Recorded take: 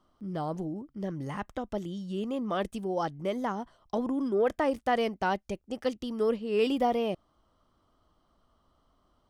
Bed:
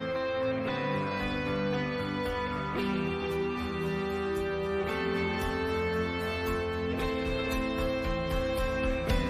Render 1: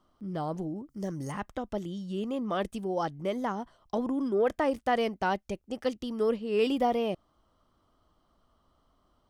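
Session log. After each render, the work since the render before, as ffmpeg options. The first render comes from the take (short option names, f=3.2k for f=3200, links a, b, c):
-filter_complex "[0:a]asettb=1/sr,asplit=3[a][b][c];[a]atrim=end=0.894[d];[b]atrim=start=0.89:end=1.32,asetpts=PTS-STARTPTS,afade=t=in:d=0.004:c=qsin,afade=t=out:st=0.426:d=0.004:c=qsin,highshelf=f=4.7k:t=q:w=1.5:g=10.5[e];[c]atrim=start=1.316[f];[d][e]acrossfade=d=0.004:c1=hsin:c2=qsin[g];[g][f]acrossfade=d=0.004:c1=qsin:c2=hsin"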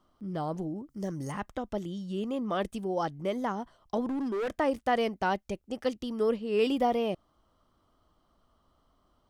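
-filter_complex "[0:a]asplit=3[a][b][c];[a]afade=t=out:st=4.05:d=0.02[d];[b]asoftclip=type=hard:threshold=-29dB,afade=t=in:st=4.05:d=0.02,afade=t=out:st=4.53:d=0.02[e];[c]afade=t=in:st=4.53:d=0.02[f];[d][e][f]amix=inputs=3:normalize=0"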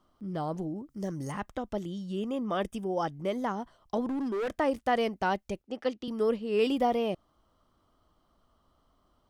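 -filter_complex "[0:a]asettb=1/sr,asplit=3[a][b][c];[a]atrim=end=2.164[d];[b]atrim=start=2.16:end=3.11,asetpts=PTS-STARTPTS,afade=t=in:d=0.004:c=qsin,afade=t=out:st=0.946:d=0.004:c=qsin,asuperstop=centerf=4200:order=8:qfactor=5.7[e];[c]atrim=start=3.106[f];[d][e]acrossfade=d=0.004:c1=hsin:c2=qsin[g];[g][f]acrossfade=d=0.004:c1=qsin:c2=hsin,asettb=1/sr,asplit=3[h][i][j];[h]atrim=end=5.624[k];[i]atrim=start=5.62:end=6.08,asetpts=PTS-STARTPTS,afade=t=in:d=0.004:c=qsin,afade=t=out:st=0.456:d=0.004:c=qsin,acrossover=split=190 5200:gain=0.251 1 0.224[l][m][n];[l][m][n]amix=inputs=3:normalize=0[o];[j]atrim=start=6.076[p];[k][o]acrossfade=d=0.004:c1=hsin:c2=qsin[q];[q][p]acrossfade=d=0.004:c1=qsin:c2=hsin"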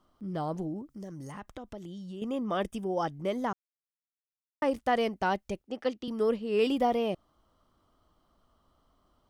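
-filter_complex "[0:a]asettb=1/sr,asplit=3[a][b][c];[a]atrim=end=0.904[d];[b]atrim=start=0.9:end=2.22,asetpts=PTS-STARTPTS,afade=t=in:d=0.004:c=qsin,afade=t=out:st=1.316:d=0.004:c=qsin,acompressor=threshold=-40dB:ratio=3:attack=3.2:release=140:knee=1:detection=peak[e];[c]atrim=start=2.216[f];[d][e]acrossfade=d=0.004:c1=hsin:c2=qsin[g];[g][f]acrossfade=d=0.004:c1=qsin:c2=hsin,asplit=3[h][i][j];[h]atrim=end=3.53,asetpts=PTS-STARTPTS,afade=t=out:st=3.526:d=0.004:c=hsin[k];[i]atrim=start=3.53:end=4.62,asetpts=PTS-STARTPTS,volume=0[l];[j]atrim=start=4.62,asetpts=PTS-STARTPTS,afade=t=in:d=0.004:c=hsin[m];[k][l][m]concat=n=3:v=0:a=1"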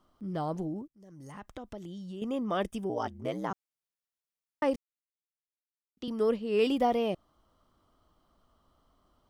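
-filter_complex "[0:a]asettb=1/sr,asplit=3[a][b][c];[a]atrim=end=2.894[d];[b]atrim=start=2.89:end=3.51,asetpts=PTS-STARTPTS,afade=t=in:d=0.004:c=qsin,afade=t=out:st=0.616:d=0.004:c=qsin,aeval=exprs='val(0)*sin(2*PI*59*n/s)':c=same[e];[c]atrim=start=3.506[f];[d][e]acrossfade=d=0.004:c1=hsin:c2=qsin[g];[g][f]acrossfade=d=0.004:c1=qsin:c2=hsin,asplit=4[h][i][j][k];[h]atrim=end=0.88,asetpts=PTS-STARTPTS,afade=t=out:st=0.876:d=0.004:c=hsin[l];[i]atrim=start=0.88:end=4.76,asetpts=PTS-STARTPTS,afade=t=in:d=0.66,afade=t=out:st=3.876:d=0.004:c=hsin[m];[j]atrim=start=4.76:end=5.97,asetpts=PTS-STARTPTS,volume=0[n];[k]atrim=start=5.97,asetpts=PTS-STARTPTS,afade=t=in:d=0.004:c=hsin[o];[l][m][n][o]concat=n=4:v=0:a=1"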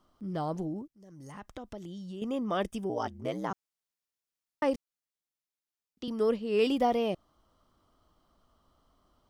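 -af "equalizer=f=5.4k:w=1.5:g=2.5"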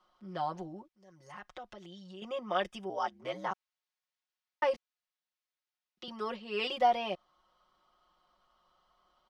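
-filter_complex "[0:a]acrossover=split=580 5400:gain=0.178 1 0.126[a][b][c];[a][b][c]amix=inputs=3:normalize=0,aecho=1:1:5.5:0.9"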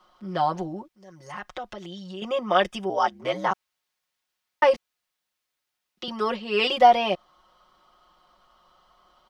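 -af "volume=11dB"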